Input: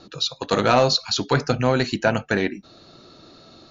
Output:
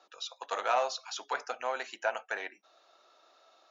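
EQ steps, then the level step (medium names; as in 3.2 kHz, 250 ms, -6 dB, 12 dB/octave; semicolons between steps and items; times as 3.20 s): ladder high-pass 570 Hz, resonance 30%; peaking EQ 4.3 kHz -12.5 dB 0.24 oct; -4.5 dB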